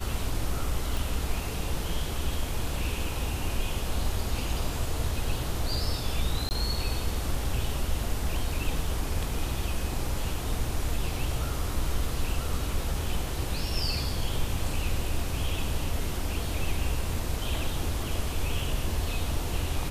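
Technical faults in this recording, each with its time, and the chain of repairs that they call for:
0:00.97: click
0:06.49–0:06.51: drop-out 19 ms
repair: click removal
repair the gap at 0:06.49, 19 ms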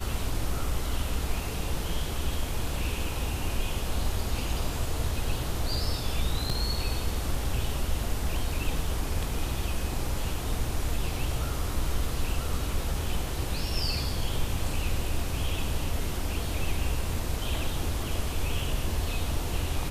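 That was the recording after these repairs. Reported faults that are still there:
none of them is left

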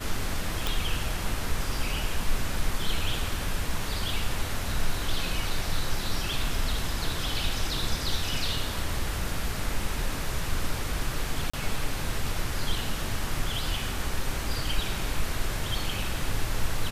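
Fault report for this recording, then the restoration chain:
0:00.67: click
0:11.50–0:11.54: drop-out 35 ms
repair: click removal
repair the gap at 0:11.50, 35 ms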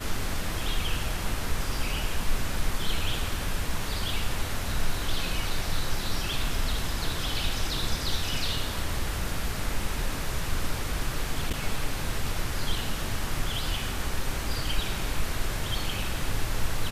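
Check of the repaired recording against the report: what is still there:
none of them is left

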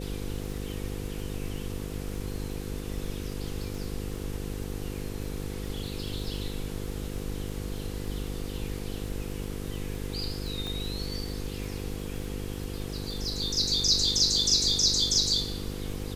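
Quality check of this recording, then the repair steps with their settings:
mains buzz 50 Hz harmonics 10 −36 dBFS
surface crackle 30 per second −36 dBFS
0:10.67: click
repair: click removal
hum removal 50 Hz, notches 10

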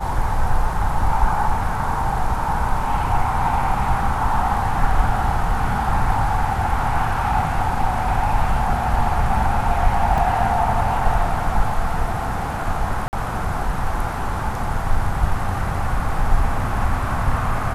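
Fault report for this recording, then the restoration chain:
0:10.18: drop-out 2.6 ms
0:13.08–0:13.13: drop-out 49 ms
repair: repair the gap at 0:10.18, 2.6 ms
repair the gap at 0:13.08, 49 ms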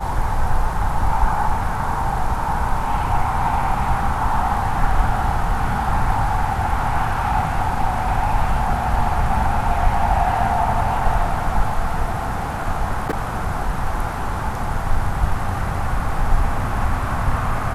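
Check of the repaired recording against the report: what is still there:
none of them is left

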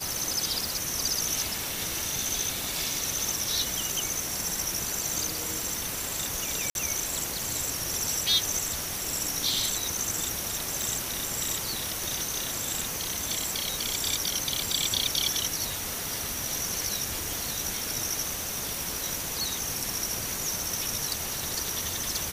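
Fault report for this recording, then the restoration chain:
0:00.66: click
0:06.70–0:06.75: drop-out 51 ms
0:10.82: click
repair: click removal
repair the gap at 0:06.70, 51 ms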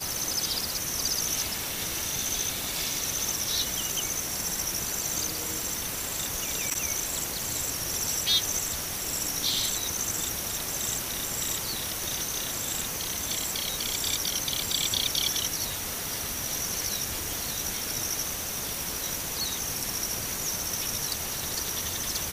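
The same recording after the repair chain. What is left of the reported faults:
none of them is left

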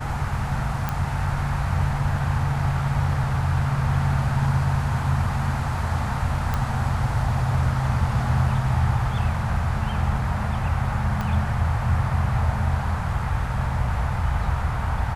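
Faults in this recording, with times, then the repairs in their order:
0:00.89: click −11 dBFS
0:06.54: click −12 dBFS
0:11.21: click −15 dBFS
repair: click removal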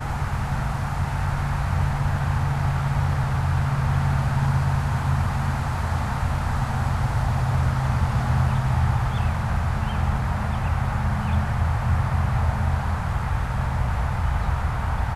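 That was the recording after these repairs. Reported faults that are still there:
0:11.21: click

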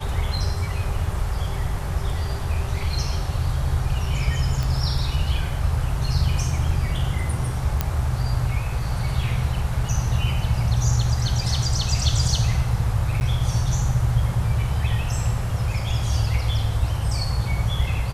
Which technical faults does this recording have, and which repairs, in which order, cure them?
0:04.63: click
0:07.81: click −7 dBFS
0:13.20–0:13.21: drop-out 9.9 ms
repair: click removal
repair the gap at 0:13.20, 9.9 ms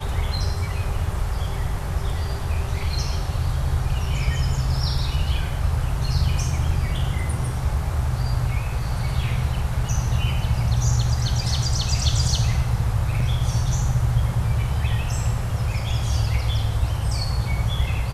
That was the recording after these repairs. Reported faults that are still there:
none of them is left

